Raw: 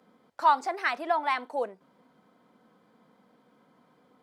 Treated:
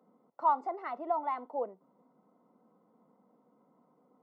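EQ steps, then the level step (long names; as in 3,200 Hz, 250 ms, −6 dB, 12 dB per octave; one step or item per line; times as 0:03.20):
Savitzky-Golay smoothing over 65 samples
high-pass filter 150 Hz 24 dB per octave
−4.0 dB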